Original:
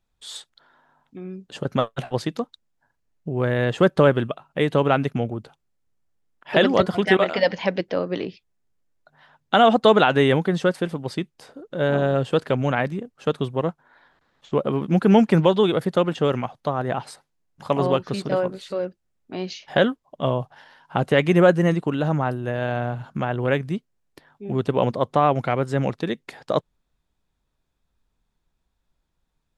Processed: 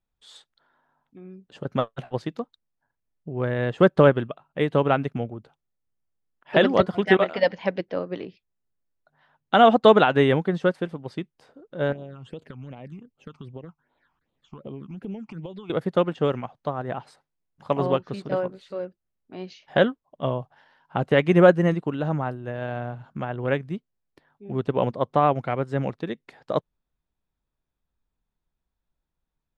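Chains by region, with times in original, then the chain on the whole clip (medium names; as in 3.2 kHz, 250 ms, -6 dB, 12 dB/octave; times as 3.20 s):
11.92–15.70 s: compression 12:1, threshold -24 dBFS + phase shifter stages 8, 2.6 Hz, lowest notch 490–1700 Hz
whole clip: low-pass 3.2 kHz 6 dB/octave; upward expansion 1.5:1, over -30 dBFS; trim +1.5 dB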